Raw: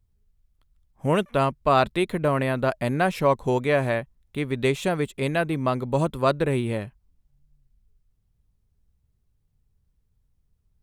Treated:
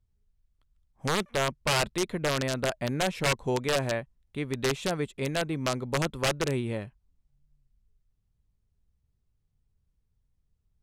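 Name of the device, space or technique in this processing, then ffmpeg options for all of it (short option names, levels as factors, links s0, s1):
overflowing digital effects unit: -af "aeval=exprs='(mod(4.47*val(0)+1,2)-1)/4.47':c=same,lowpass=9200,volume=0.562"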